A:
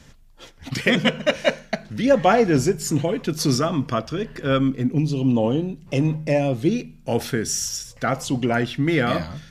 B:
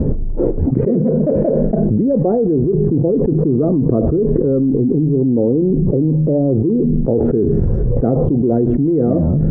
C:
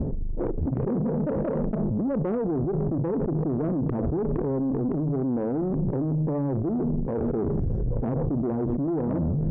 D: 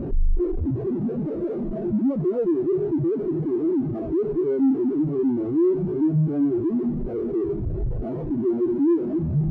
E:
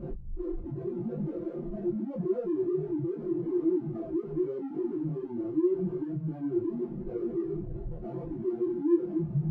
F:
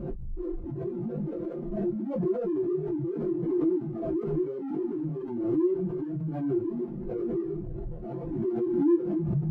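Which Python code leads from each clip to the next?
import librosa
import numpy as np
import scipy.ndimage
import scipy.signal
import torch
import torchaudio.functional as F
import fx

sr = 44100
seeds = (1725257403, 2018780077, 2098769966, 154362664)

y1 = fx.ladder_lowpass(x, sr, hz=480.0, resonance_pct=50)
y1 = fx.env_flatten(y1, sr, amount_pct=100)
y1 = y1 * 10.0 ** (3.5 / 20.0)
y2 = fx.peak_eq(y1, sr, hz=1200.0, db=-5.5, octaves=3.0)
y2 = fx.tube_stage(y2, sr, drive_db=14.0, bias=0.45)
y2 = y2 * 10.0 ** (-6.0 / 20.0)
y3 = fx.small_body(y2, sr, hz=(360.0, 660.0), ring_ms=30, db=14)
y3 = fx.schmitt(y3, sr, flips_db=-45.0)
y3 = fx.spectral_expand(y3, sr, expansion=2.5)
y3 = y3 * 10.0 ** (1.5 / 20.0)
y4 = y3 + 0.97 * np.pad(y3, (int(5.8 * sr / 1000.0), 0))[:len(y3)]
y4 = fx.detune_double(y4, sr, cents=29)
y4 = y4 * 10.0 ** (-7.5 / 20.0)
y5 = fx.pre_swell(y4, sr, db_per_s=38.0)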